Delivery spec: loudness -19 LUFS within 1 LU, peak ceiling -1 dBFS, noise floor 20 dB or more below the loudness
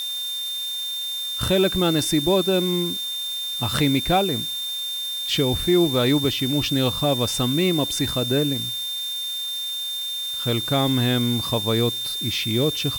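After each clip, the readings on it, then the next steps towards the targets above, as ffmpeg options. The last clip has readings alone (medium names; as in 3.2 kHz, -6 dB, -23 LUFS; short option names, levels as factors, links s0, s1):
steady tone 3.6 kHz; tone level -26 dBFS; noise floor -29 dBFS; noise floor target -42 dBFS; loudness -22.0 LUFS; peak level -8.0 dBFS; loudness target -19.0 LUFS
-> -af "bandreject=f=3600:w=30"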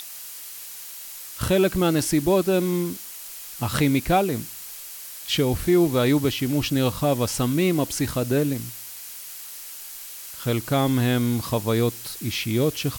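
steady tone not found; noise floor -39 dBFS; noise floor target -43 dBFS
-> -af "afftdn=nr=6:nf=-39"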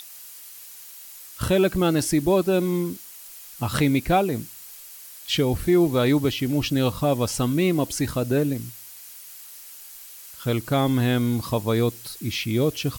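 noise floor -43 dBFS; loudness -23.0 LUFS; peak level -8.5 dBFS; loudness target -19.0 LUFS
-> -af "volume=1.58"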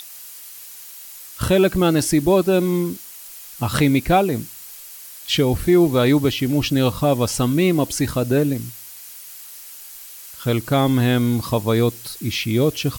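loudness -19.0 LUFS; peak level -4.5 dBFS; noise floor -39 dBFS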